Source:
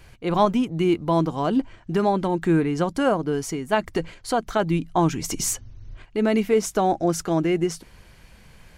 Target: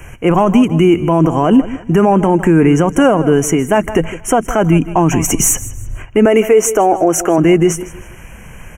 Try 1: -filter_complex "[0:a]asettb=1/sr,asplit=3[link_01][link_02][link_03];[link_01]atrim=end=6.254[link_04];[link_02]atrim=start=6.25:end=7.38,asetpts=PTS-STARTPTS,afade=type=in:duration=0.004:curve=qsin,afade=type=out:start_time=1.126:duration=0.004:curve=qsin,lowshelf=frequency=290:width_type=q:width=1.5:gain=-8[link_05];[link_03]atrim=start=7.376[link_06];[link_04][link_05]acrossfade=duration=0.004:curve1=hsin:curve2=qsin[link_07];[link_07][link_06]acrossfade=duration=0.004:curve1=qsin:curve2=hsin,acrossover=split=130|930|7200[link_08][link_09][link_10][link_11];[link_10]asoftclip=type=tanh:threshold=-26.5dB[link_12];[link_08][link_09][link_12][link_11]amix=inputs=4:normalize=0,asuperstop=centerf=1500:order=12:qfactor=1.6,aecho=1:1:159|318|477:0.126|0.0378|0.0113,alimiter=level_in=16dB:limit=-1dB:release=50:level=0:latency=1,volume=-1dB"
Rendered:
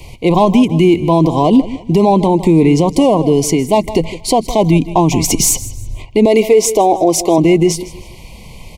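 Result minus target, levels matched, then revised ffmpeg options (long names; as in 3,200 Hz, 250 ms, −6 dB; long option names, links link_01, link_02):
2,000 Hz band −4.5 dB
-filter_complex "[0:a]asettb=1/sr,asplit=3[link_01][link_02][link_03];[link_01]atrim=end=6.254[link_04];[link_02]atrim=start=6.25:end=7.38,asetpts=PTS-STARTPTS,afade=type=in:duration=0.004:curve=qsin,afade=type=out:start_time=1.126:duration=0.004:curve=qsin,lowshelf=frequency=290:width_type=q:width=1.5:gain=-8[link_05];[link_03]atrim=start=7.376[link_06];[link_04][link_05]acrossfade=duration=0.004:curve1=hsin:curve2=qsin[link_07];[link_07][link_06]acrossfade=duration=0.004:curve1=qsin:curve2=hsin,acrossover=split=130|930|7200[link_08][link_09][link_10][link_11];[link_10]asoftclip=type=tanh:threshold=-26.5dB[link_12];[link_08][link_09][link_12][link_11]amix=inputs=4:normalize=0,asuperstop=centerf=4200:order=12:qfactor=1.6,aecho=1:1:159|318|477:0.126|0.0378|0.0113,alimiter=level_in=16dB:limit=-1dB:release=50:level=0:latency=1,volume=-1dB"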